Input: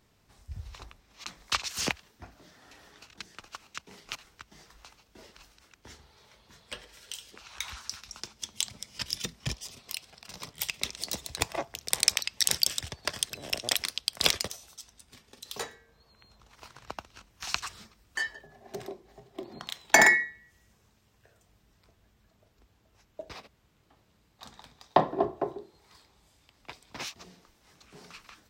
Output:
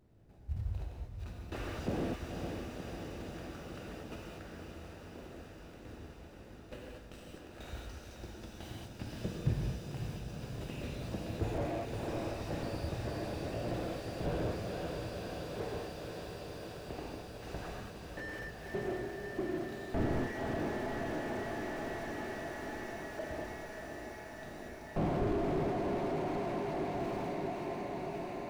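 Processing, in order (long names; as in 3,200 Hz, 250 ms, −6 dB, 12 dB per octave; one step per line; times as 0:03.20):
running median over 41 samples
0:03.87–0:05.21: frequency shifter +28 Hz
on a send: feedback delay with all-pass diffusion 528 ms, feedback 78%, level −7 dB
on the sum: reverb whose tail is shaped and stops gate 260 ms flat, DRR −1.5 dB
slew-rate limiting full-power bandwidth 9.2 Hz
level +2.5 dB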